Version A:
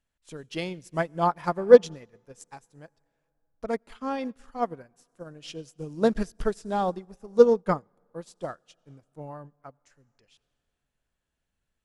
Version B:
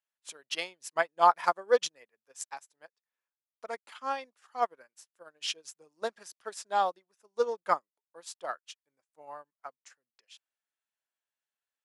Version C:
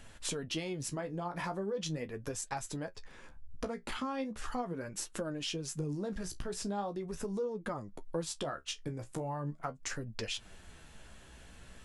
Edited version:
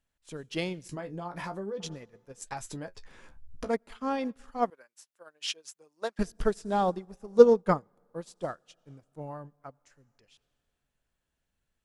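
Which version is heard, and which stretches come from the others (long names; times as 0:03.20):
A
0:00.89–0:01.80: punch in from C
0:02.42–0:03.69: punch in from C
0:04.70–0:06.19: punch in from B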